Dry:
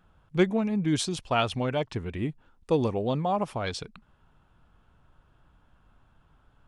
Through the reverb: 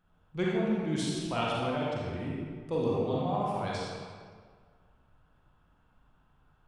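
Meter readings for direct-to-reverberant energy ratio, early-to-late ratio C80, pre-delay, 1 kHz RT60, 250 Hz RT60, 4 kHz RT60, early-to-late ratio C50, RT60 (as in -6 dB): -5.5 dB, 0.0 dB, 35 ms, 1.8 s, 1.8 s, 1.2 s, -3.0 dB, 1.8 s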